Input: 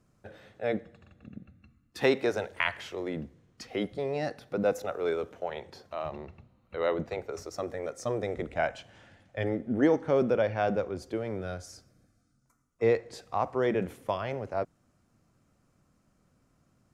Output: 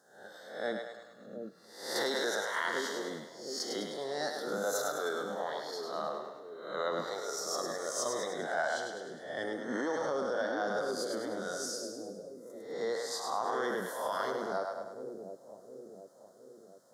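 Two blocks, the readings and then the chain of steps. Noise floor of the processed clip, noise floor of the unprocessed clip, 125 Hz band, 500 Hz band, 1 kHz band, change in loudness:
−57 dBFS, −70 dBFS, −15.5 dB, −5.0 dB, −0.5 dB, −4.5 dB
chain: peak hold with a rise ahead of every peak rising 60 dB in 0.65 s
Butterworth band-reject 2,500 Hz, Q 1.2
flanger 0.47 Hz, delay 3.7 ms, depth 8.2 ms, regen −85%
high-pass filter 170 Hz 24 dB per octave
on a send: echo with a time of its own for lows and highs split 520 Hz, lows 716 ms, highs 103 ms, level −5 dB
on the sum: brickwall limiter −24 dBFS, peak gain reduction 7.5 dB
tilt shelving filter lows −9 dB, about 900 Hz
level +2.5 dB

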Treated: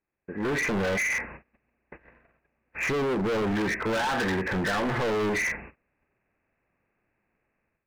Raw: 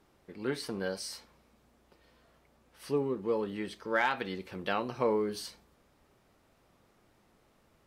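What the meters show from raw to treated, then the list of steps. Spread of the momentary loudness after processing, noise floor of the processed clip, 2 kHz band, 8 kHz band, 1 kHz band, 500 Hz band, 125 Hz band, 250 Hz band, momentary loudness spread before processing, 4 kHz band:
7 LU, −80 dBFS, +10.5 dB, +8.5 dB, +5.0 dB, +4.5 dB, +10.5 dB, +7.5 dB, 12 LU, +5.5 dB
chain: hearing-aid frequency compression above 1,500 Hz 4 to 1
noise gate −60 dBFS, range −30 dB
brickwall limiter −27.5 dBFS, peak gain reduction 11 dB
treble cut that deepens with the level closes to 1,100 Hz, closed at −31.5 dBFS
automatic gain control gain up to 12 dB
hard clipping −33 dBFS, distortion −4 dB
level +8 dB

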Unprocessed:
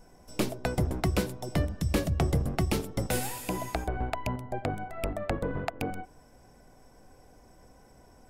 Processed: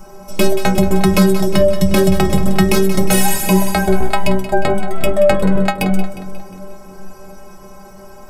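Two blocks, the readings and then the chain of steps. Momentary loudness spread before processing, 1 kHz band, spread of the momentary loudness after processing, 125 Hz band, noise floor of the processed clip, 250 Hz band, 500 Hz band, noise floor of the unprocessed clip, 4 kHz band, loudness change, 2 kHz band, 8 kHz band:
7 LU, +15.5 dB, 6 LU, +12.0 dB, −37 dBFS, +18.5 dB, +19.0 dB, −57 dBFS, +16.0 dB, +16.5 dB, +16.0 dB, +17.0 dB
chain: hum with harmonics 120 Hz, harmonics 11, −62 dBFS 0 dB per octave
stiff-string resonator 190 Hz, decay 0.3 s, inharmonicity 0.008
echo with a time of its own for lows and highs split 570 Hz, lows 355 ms, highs 179 ms, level −12.5 dB
boost into a limiter +31 dB
level −1 dB

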